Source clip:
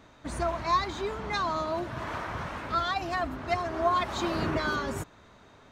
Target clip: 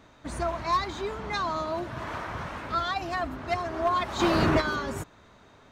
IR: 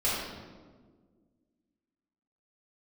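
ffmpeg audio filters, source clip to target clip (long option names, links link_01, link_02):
-filter_complex "[0:a]asplit=3[link_01][link_02][link_03];[link_01]afade=type=out:start_time=4.19:duration=0.02[link_04];[link_02]acontrast=86,afade=type=in:start_time=4.19:duration=0.02,afade=type=out:start_time=4.6:duration=0.02[link_05];[link_03]afade=type=in:start_time=4.6:duration=0.02[link_06];[link_04][link_05][link_06]amix=inputs=3:normalize=0,aeval=exprs='clip(val(0),-1,0.119)':channel_layout=same"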